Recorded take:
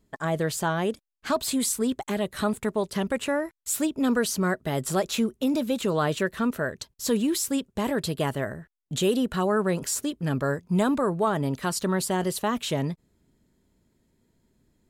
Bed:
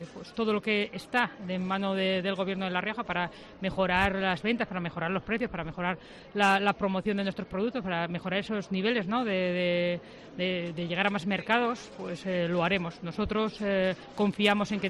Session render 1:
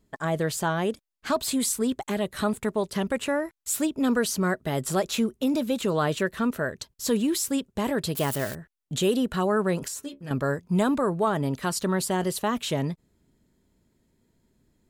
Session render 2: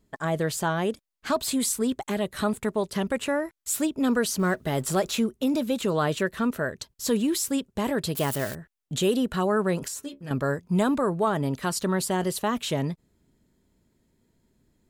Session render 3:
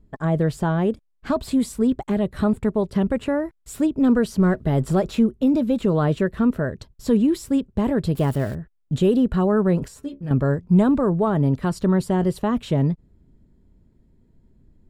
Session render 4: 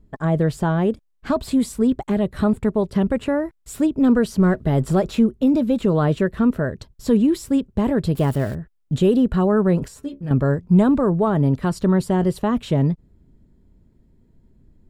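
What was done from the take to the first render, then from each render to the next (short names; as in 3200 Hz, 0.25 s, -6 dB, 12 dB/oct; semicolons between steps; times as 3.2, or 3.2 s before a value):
8.15–8.55 switching spikes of -25 dBFS; 9.88–10.31 metallic resonator 68 Hz, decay 0.23 s, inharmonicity 0.002
4.39–5.12 G.711 law mismatch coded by mu
tilt -3.5 dB/oct; notch 6300 Hz, Q 15
gain +1.5 dB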